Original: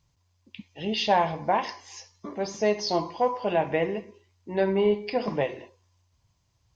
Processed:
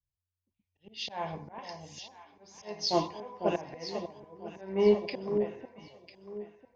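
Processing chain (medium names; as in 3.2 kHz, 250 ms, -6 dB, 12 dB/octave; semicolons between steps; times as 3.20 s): slow attack 259 ms; echo whose repeats swap between lows and highs 499 ms, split 820 Hz, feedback 68%, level -4 dB; three bands expanded up and down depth 70%; trim -5.5 dB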